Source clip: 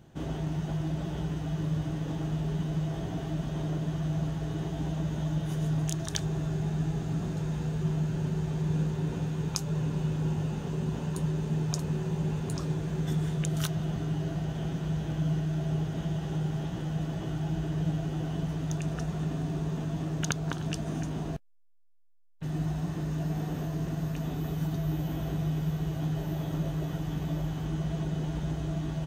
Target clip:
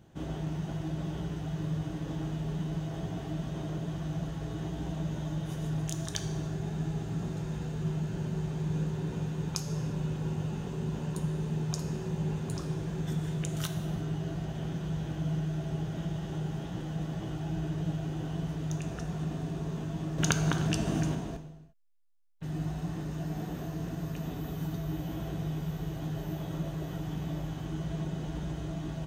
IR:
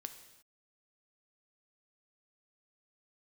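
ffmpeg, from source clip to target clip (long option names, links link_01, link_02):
-filter_complex "[0:a]asettb=1/sr,asplit=3[link_01][link_02][link_03];[link_01]atrim=end=20.184[link_04];[link_02]atrim=start=20.18:end=21.15,asetpts=PTS-STARTPTS,afade=type=in:duration=0.004:curve=qsin,afade=type=out:start_time=0.966:duration=0.004:curve=qsin,acontrast=60[link_05];[link_03]atrim=start=21.146[link_06];[link_04][link_05]acrossfade=duration=0.004:curve1=hsin:curve2=qsin[link_07];[link_07][link_06]acrossfade=duration=0.004:curve1=qsin:curve2=hsin[link_08];[1:a]atrim=start_sample=2205[link_09];[link_08][link_09]afir=irnorm=-1:irlink=0,volume=1.5dB"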